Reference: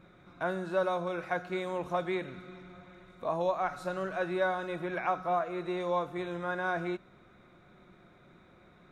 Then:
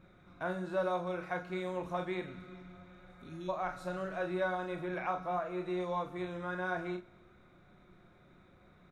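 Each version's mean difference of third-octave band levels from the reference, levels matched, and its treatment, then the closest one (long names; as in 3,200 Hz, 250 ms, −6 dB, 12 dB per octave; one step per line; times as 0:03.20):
1.5 dB: healed spectral selection 0:02.96–0:03.46, 410–2,300 Hz before
low-shelf EQ 95 Hz +8 dB
ambience of single reflections 33 ms −8.5 dB, 44 ms −11.5 dB
four-comb reverb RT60 1 s, combs from 28 ms, DRR 19.5 dB
level −5 dB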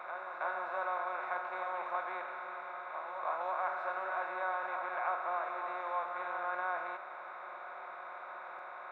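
10.5 dB: compressor on every frequency bin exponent 0.4
four-pole ladder band-pass 1,200 Hz, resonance 30%
backwards echo 327 ms −6.5 dB
one half of a high-frequency compander encoder only
level +2.5 dB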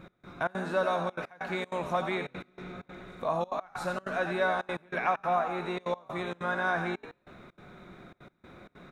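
5.5 dB: in parallel at −1.5 dB: downward compressor, threshold −39 dBFS, peak gain reduction 14 dB
on the sum: dynamic equaliser 350 Hz, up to −6 dB, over −43 dBFS, Q 1
echo with shifted repeats 88 ms, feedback 52%, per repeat +59 Hz, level −9 dB
gate pattern "x..xxx.xxxxxxx." 192 BPM −24 dB
level +2 dB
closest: first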